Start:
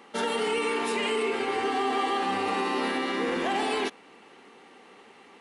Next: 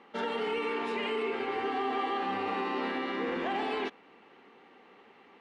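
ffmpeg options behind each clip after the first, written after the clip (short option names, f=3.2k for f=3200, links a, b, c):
-af "lowpass=3.2k,volume=-4.5dB"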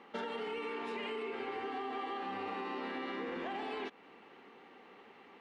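-af "acompressor=threshold=-37dB:ratio=6"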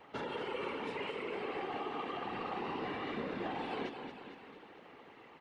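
-af "aecho=1:1:225|450|675|900|1125|1350|1575:0.398|0.235|0.139|0.0818|0.0482|0.0285|0.0168,afftfilt=real='hypot(re,im)*cos(2*PI*random(0))':imag='hypot(re,im)*sin(2*PI*random(1))':win_size=512:overlap=0.75,volume=5.5dB"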